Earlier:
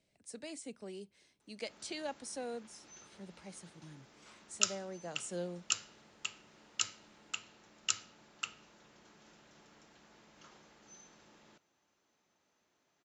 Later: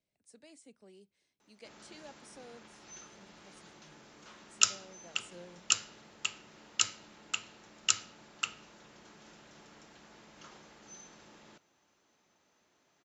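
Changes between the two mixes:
speech −11.0 dB
background +5.5 dB

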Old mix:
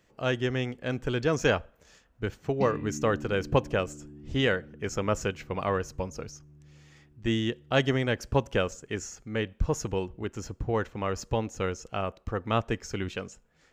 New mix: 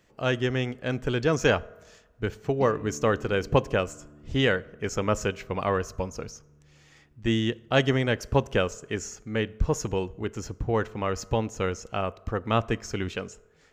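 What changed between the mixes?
background −5.0 dB
reverb: on, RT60 1.2 s

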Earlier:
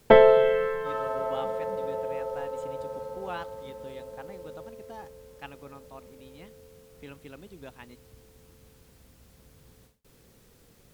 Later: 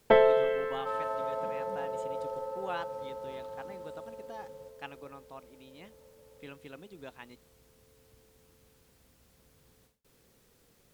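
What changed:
speech: entry −0.60 s
first sound −5.0 dB
master: add low-shelf EQ 240 Hz −5.5 dB

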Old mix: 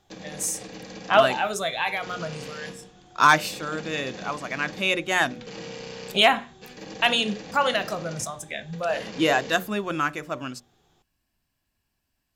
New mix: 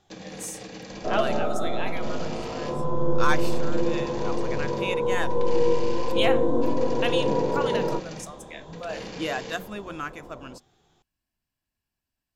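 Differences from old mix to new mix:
speech −8.5 dB
second sound: unmuted

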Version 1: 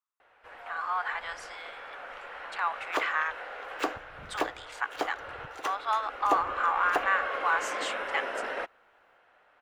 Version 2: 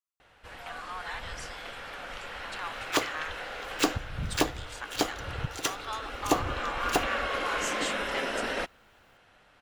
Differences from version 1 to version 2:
speech −10.0 dB
master: remove three-way crossover with the lows and the highs turned down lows −18 dB, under 380 Hz, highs −15 dB, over 2,300 Hz

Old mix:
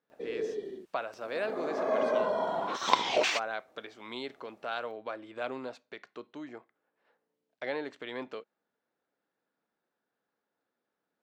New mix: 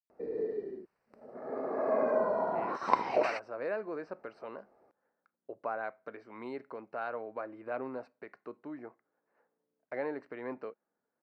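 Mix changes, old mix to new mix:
speech: entry +2.30 s
master: add moving average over 13 samples

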